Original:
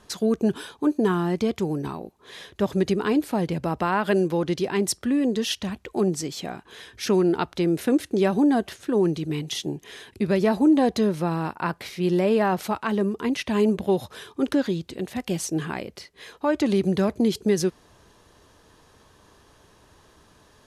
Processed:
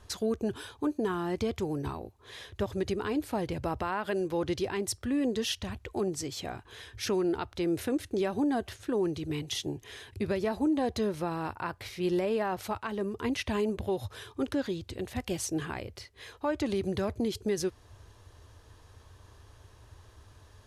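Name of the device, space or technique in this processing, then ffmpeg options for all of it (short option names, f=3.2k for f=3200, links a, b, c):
car stereo with a boomy subwoofer: -af "lowshelf=f=130:t=q:w=3:g=8,alimiter=limit=-17dB:level=0:latency=1:release=344,volume=-4dB"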